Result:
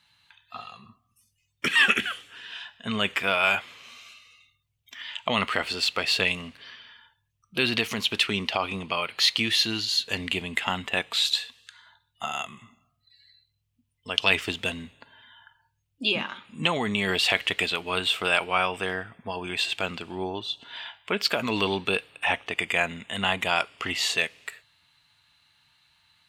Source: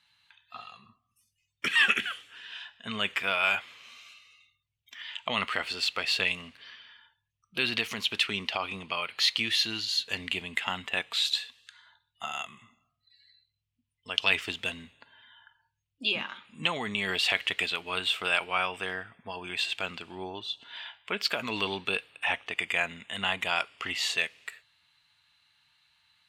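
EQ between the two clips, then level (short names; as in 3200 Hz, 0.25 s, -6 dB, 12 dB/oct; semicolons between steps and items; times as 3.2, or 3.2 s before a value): tilt shelf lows +6.5 dB, about 1400 Hz; high shelf 3100 Hz +10.5 dB; +2.0 dB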